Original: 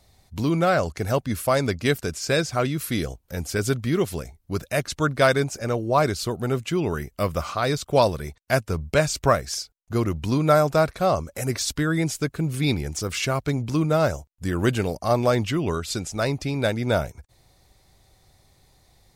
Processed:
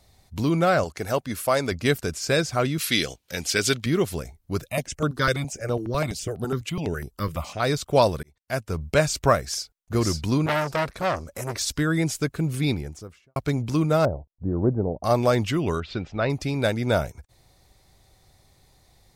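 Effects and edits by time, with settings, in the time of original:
0:00.84–0:01.72: low-shelf EQ 180 Hz −10 dB
0:02.78–0:03.86: meter weighting curve D
0:04.61–0:07.60: step-sequenced phaser 12 Hz 220–6,800 Hz
0:08.23–0:08.88: fade in
0:09.39–0:09.95: delay throw 540 ms, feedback 25%, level −2 dB
0:10.46–0:11.71: saturating transformer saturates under 2,200 Hz
0:12.48–0:13.36: fade out and dull
0:14.05–0:15.04: inverse Chebyshev low-pass filter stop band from 2,800 Hz, stop band 60 dB
0:15.80–0:16.30: low-pass filter 3,400 Hz 24 dB per octave

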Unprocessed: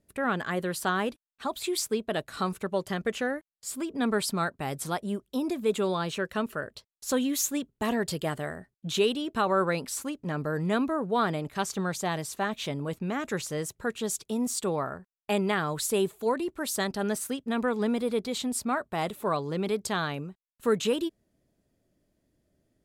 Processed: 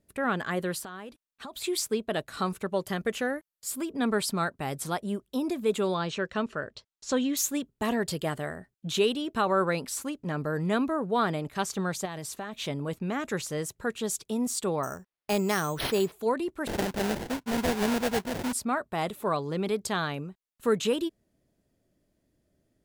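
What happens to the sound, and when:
0:00.81–0:01.55: downward compressor 12 to 1, threshold −37 dBFS
0:02.82–0:03.92: parametric band 13,000 Hz +7.5 dB 0.62 octaves
0:05.94–0:07.37: low-pass filter 7,100 Hz 24 dB per octave
0:12.05–0:12.59: downward compressor 10 to 1, threshold −32 dBFS
0:14.83–0:16.12: bad sample-rate conversion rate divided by 6×, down none, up hold
0:16.67–0:18.53: sample-rate reduction 1,200 Hz, jitter 20%

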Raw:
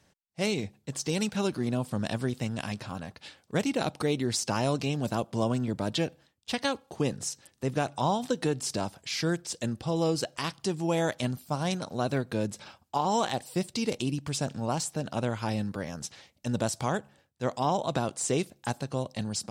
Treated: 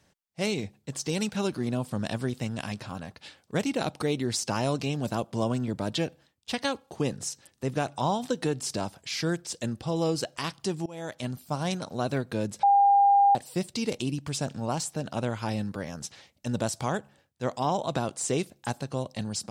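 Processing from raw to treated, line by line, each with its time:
0:10.86–0:11.45: fade in, from −23 dB
0:12.63–0:13.35: beep over 802 Hz −16 dBFS

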